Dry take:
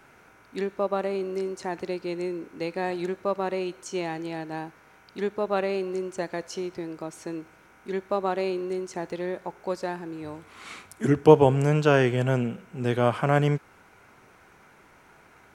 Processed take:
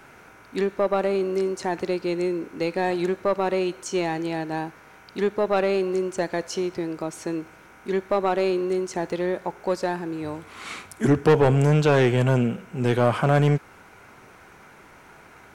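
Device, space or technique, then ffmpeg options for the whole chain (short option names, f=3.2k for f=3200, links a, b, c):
saturation between pre-emphasis and de-emphasis: -af "highshelf=f=4.1k:g=10.5,asoftclip=type=tanh:threshold=-17.5dB,highshelf=f=4.1k:g=-10.5,volume=6dB"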